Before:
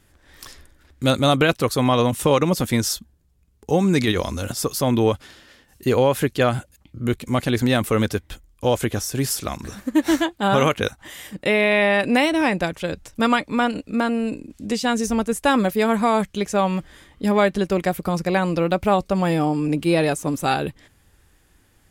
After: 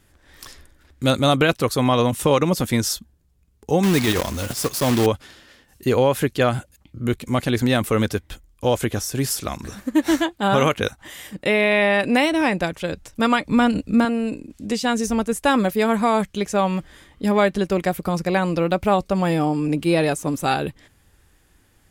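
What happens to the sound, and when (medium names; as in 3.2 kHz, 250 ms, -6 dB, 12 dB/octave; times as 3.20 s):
3.83–5.08 s: block-companded coder 3-bit
13.45–14.05 s: tone controls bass +11 dB, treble +3 dB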